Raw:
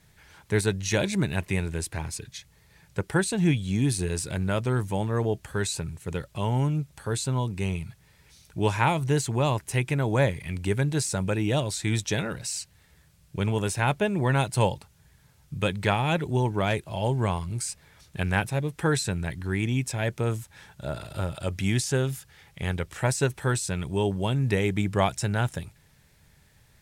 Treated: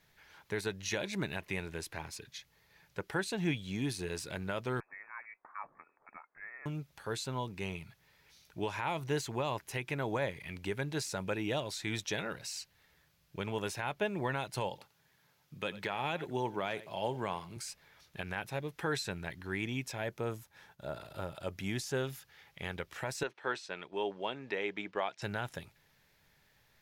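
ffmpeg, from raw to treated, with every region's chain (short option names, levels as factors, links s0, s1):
-filter_complex "[0:a]asettb=1/sr,asplit=3[s0][s1][s2];[s0]atrim=end=4.804[s3];[s1]atrim=start=4.8:end=6.66,asetpts=PTS-STARTPTS,afade=t=in:d=0.004:c=qsin,afade=t=out:st=1.856:d=0.004:c=qsin,highpass=1500,lowpass=f=2300:t=q:w=0.5098,lowpass=f=2300:t=q:w=0.6013,lowpass=f=2300:t=q:w=0.9,lowpass=f=2300:t=q:w=2.563,afreqshift=-2700[s4];[s2]atrim=start=6.656[s5];[s3][s4]acrossfade=d=0.004:c1=hsin:c2=qsin[s6];[s6][s5]acrossfade=d=0.004:c1=qsin:c2=hsin,asettb=1/sr,asplit=3[s7][s8][s9];[s7]atrim=end=14.694[s10];[s8]atrim=start=14.69:end=17.57,asetpts=PTS-STARTPTS,afade=t=in:d=0.004:c=qsin,afade=t=out:st=2.876:d=0.004:c=qsin,highpass=130,aecho=1:1:90:0.112,atrim=end_sample=127008[s11];[s9]atrim=start=17.566[s12];[s10][s11]acrossfade=d=0.004:c1=hsin:c2=qsin[s13];[s13][s12]acrossfade=d=0.004:c1=qsin:c2=hsin,asettb=1/sr,asplit=3[s14][s15][s16];[s14]atrim=end=19.984[s17];[s15]atrim=start=19.98:end=21.97,asetpts=PTS-STARTPTS,afade=t=in:d=0.004:c=qsin,afade=t=out:st=1.986:d=0.004:c=qsin,agate=range=0.0224:threshold=0.00251:ratio=3:release=100:detection=peak,equalizer=f=2900:w=0.56:g=-4.5[s18];[s16]atrim=start=21.966[s19];[s17][s18]acrossfade=d=0.004:c1=hsin:c2=qsin[s20];[s20][s19]acrossfade=d=0.004:c1=qsin:c2=hsin,asettb=1/sr,asplit=3[s21][s22][s23];[s21]atrim=end=23.234[s24];[s22]atrim=start=23.23:end=25.22,asetpts=PTS-STARTPTS,afade=t=in:d=0.004:c=qsin,afade=t=out:st=1.986:d=0.004:c=qsin,highpass=330,lowpass=4000,agate=range=0.447:threshold=0.00631:ratio=16:release=100:detection=peak[s25];[s23]atrim=start=25.216[s26];[s24][s25]acrossfade=d=0.004:c1=hsin:c2=qsin[s27];[s27][s26]acrossfade=d=0.004:c1=qsin:c2=hsin,equalizer=f=67:w=0.32:g=-12.5,alimiter=limit=0.126:level=0:latency=1:release=134,equalizer=f=8600:w=1.7:g=-11.5,volume=0.631"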